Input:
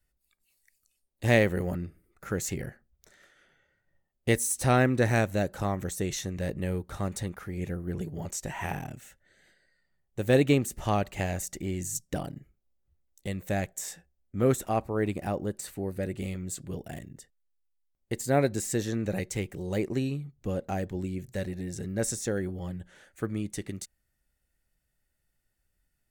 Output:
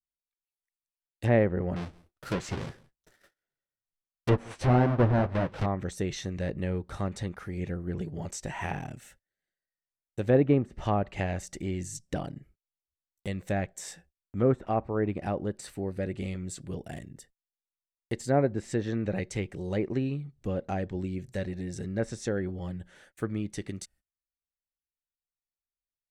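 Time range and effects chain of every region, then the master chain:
1.76–5.66 half-waves squared off + flange 1.6 Hz, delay 5 ms, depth 7.6 ms, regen -40% + echo 0.171 s -24 dB
whole clip: gate -58 dBFS, range -28 dB; treble ducked by the level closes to 1300 Hz, closed at -22 dBFS; notch 6800 Hz, Q 15

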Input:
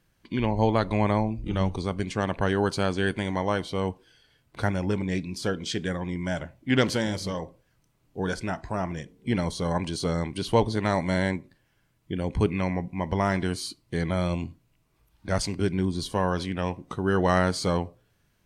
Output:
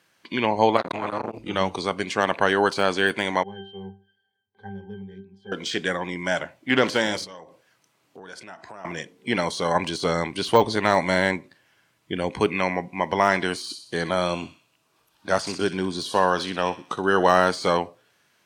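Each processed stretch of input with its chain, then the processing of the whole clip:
0.77–1.39 transient shaper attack -4 dB, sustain +6 dB + core saturation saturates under 1000 Hz
3.43–5.52 bell 1300 Hz -4 dB 0.69 oct + octave resonator G, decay 0.34 s
7.24–8.85 HPF 54 Hz + compressor, threshold -43 dBFS
9.75–12.29 low shelf 90 Hz +11 dB + hard clip -10.5 dBFS
13.61–17.49 bell 2100 Hz -9 dB 0.28 oct + thin delay 62 ms, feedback 49%, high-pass 1800 Hz, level -12 dB
whole clip: de-esser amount 90%; weighting filter A; gain +8.5 dB

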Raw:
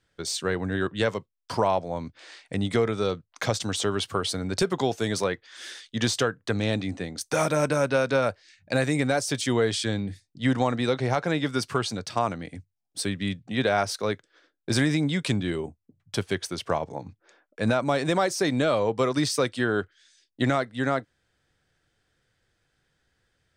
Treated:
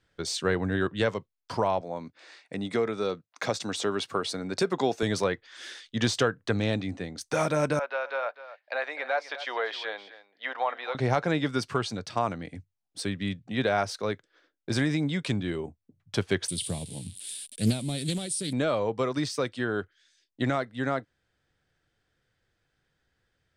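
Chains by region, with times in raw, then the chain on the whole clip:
1.81–5.03 HPF 180 Hz + notch 3100 Hz
7.79–10.95 HPF 630 Hz 24 dB/oct + air absorption 320 m + echo 0.253 s -15 dB
16.48–18.53 switching spikes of -27.5 dBFS + EQ curve 210 Hz 0 dB, 320 Hz -9 dB, 830 Hz -21 dB, 1300 Hz -26 dB, 3600 Hz +3 dB, 6300 Hz -10 dB, 9400 Hz +15 dB, 14000 Hz -24 dB + Doppler distortion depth 0.42 ms
whole clip: high shelf 8300 Hz -10 dB; vocal rider 2 s; gain -2 dB

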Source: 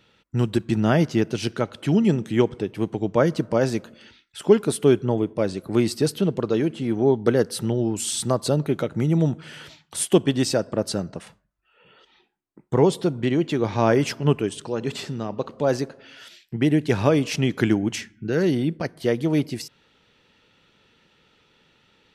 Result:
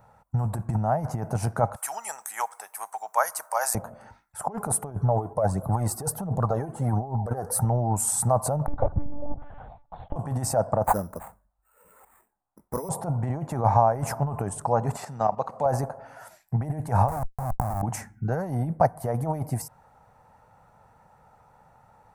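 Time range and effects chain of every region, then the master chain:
1.76–3.75 HPF 1300 Hz + tilt +4.5 dB/oct
4.91–7.65 phaser 1.4 Hz, delay 2.9 ms, feedback 52% + bell 2400 Hz -7 dB 0.41 oct
8.66–10.16 bell 1700 Hz -11.5 dB 2.2 oct + monotone LPC vocoder at 8 kHz 290 Hz
10.84–12.89 fixed phaser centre 320 Hz, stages 4 + careless resampling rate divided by 8×, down none, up hold
14.97–15.66 weighting filter D + level quantiser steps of 10 dB
17.08–17.82 G.711 law mismatch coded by A + low shelf 470 Hz +10.5 dB + Schmitt trigger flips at -14 dBFS
whole clip: tilt shelf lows +3.5 dB; negative-ratio compressor -22 dBFS, ratio -1; EQ curve 120 Hz 0 dB, 360 Hz -17 dB, 770 Hz +13 dB, 2200 Hz -12 dB, 3200 Hz -26 dB, 9600 Hz +6 dB

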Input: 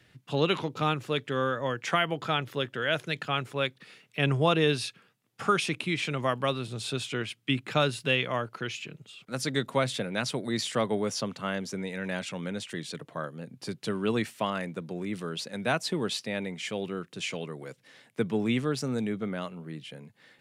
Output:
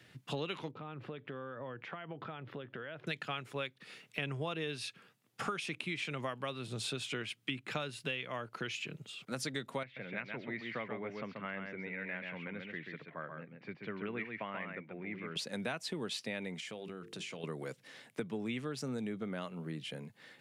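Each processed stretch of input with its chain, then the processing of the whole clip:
0.71–3.07 compressor 8:1, threshold -39 dBFS + air absorption 400 m
9.83–15.36 ladder low-pass 2400 Hz, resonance 65% + echo 0.134 s -5.5 dB
16.6–17.44 notches 50/100/150/200/250/300/350/400/450 Hz + compressor 10:1, threshold -41 dBFS
whole clip: HPF 100 Hz; dynamic EQ 2300 Hz, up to +4 dB, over -40 dBFS, Q 1.2; compressor 6:1, threshold -37 dBFS; gain +1 dB

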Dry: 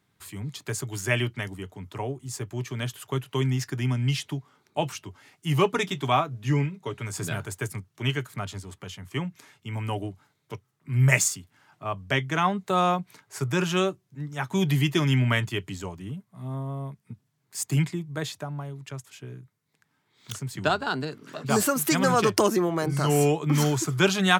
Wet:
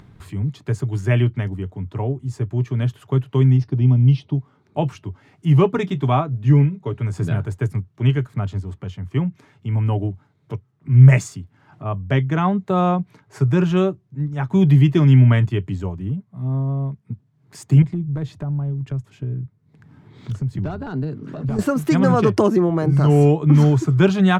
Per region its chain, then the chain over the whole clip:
3.57–4.35 polynomial smoothing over 15 samples + bell 1700 Hz -14.5 dB 0.8 oct
17.82–21.59 low shelf 380 Hz +8.5 dB + compressor 2.5:1, threshold -34 dBFS + hard clip -27.5 dBFS
whole clip: tilt -3.5 dB/oct; upward compressor, threshold -35 dBFS; high shelf 8400 Hz -6 dB; gain +1.5 dB

